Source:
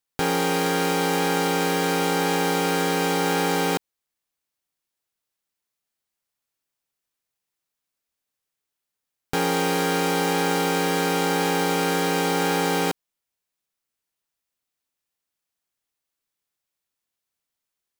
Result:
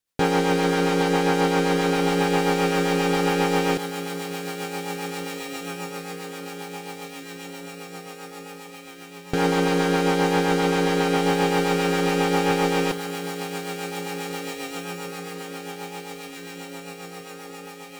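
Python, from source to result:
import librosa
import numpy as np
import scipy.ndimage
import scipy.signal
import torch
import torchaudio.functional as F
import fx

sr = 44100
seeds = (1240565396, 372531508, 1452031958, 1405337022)

y = fx.echo_diffused(x, sr, ms=1989, feedback_pct=59, wet_db=-10)
y = fx.rotary(y, sr, hz=7.5)
y = fx.slew_limit(y, sr, full_power_hz=110.0)
y = y * librosa.db_to_amplitude(4.5)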